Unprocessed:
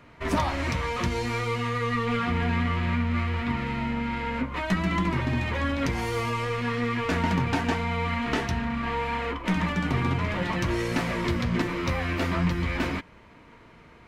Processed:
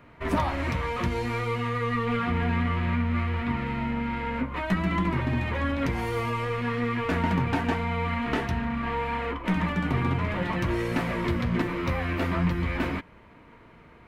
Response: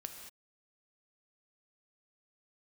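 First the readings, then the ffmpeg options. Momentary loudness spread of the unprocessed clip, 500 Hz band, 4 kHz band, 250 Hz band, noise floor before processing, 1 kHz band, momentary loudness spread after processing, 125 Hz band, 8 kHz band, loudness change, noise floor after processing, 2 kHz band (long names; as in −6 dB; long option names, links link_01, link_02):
3 LU, 0.0 dB, −4.0 dB, 0.0 dB, −52 dBFS, −0.5 dB, 3 LU, 0.0 dB, can't be measured, −0.5 dB, −52 dBFS, −1.5 dB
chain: -af "equalizer=frequency=6000:width_type=o:width=1.5:gain=-8.5"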